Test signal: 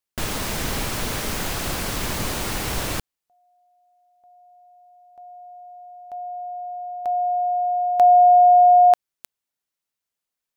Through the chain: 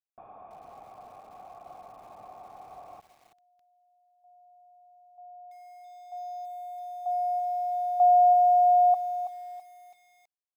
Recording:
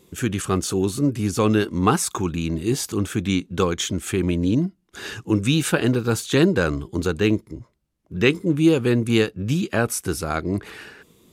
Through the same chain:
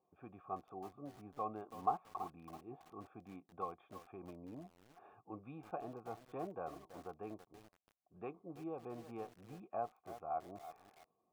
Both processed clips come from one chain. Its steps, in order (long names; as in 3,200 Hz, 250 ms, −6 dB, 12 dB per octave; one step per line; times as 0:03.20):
formant resonators in series a
notch comb filter 1,000 Hz
feedback echo at a low word length 329 ms, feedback 35%, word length 8 bits, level −11 dB
level −4 dB